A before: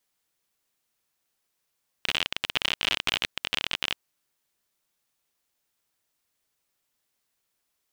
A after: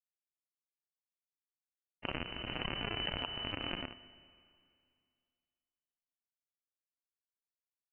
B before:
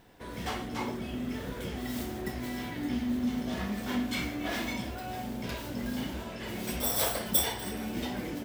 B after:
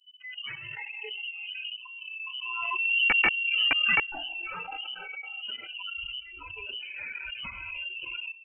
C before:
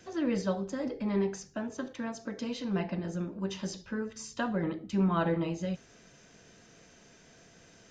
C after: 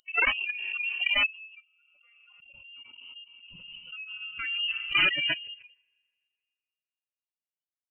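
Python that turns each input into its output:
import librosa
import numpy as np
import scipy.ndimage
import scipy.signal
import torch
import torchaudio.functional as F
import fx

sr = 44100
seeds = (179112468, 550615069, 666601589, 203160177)

y = fx.bin_expand(x, sr, power=3.0)
y = fx.tilt_eq(y, sr, slope=-2.0)
y = fx.level_steps(y, sr, step_db=15)
y = fx.peak_eq(y, sr, hz=220.0, db=3.0, octaves=1.1)
y = fx.rev_schroeder(y, sr, rt60_s=2.3, comb_ms=28, drr_db=14.0)
y = (np.mod(10.0 ** (25.0 / 20.0) * y + 1.0, 2.0) - 1.0) / 10.0 ** (25.0 / 20.0)
y = fx.freq_invert(y, sr, carrier_hz=3000)
y = fx.noise_reduce_blind(y, sr, reduce_db=25)
y = fx.pre_swell(y, sr, db_per_s=21.0)
y = y * librosa.db_to_amplitude(7.5)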